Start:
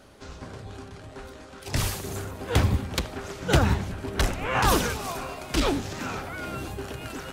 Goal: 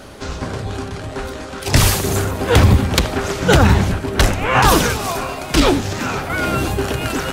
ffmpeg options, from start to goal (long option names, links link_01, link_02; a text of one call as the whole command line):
ffmpeg -i in.wav -filter_complex "[0:a]asettb=1/sr,asplit=3[link_01][link_02][link_03];[link_01]atrim=end=3.984[link_04];[link_02]atrim=start=3.98:end=6.3,asetpts=PTS-STARTPTS,afade=type=in:duration=0.004:curve=qsin,afade=type=out:start_time=2.316:duration=0.004:curve=qsin,flanger=delay=5.9:depth=4.6:regen=78:speed=1.3:shape=triangular[link_05];[link_03]atrim=start=6.296[link_06];[link_04][link_05]acrossfade=duration=0.004:curve1=hsin:curve2=qsin[link_07];[link_07][link_06]acrossfade=duration=0.004:curve1=qsin:curve2=hsin,alimiter=level_in=16dB:limit=-1dB:release=50:level=0:latency=1,volume=-1dB" out.wav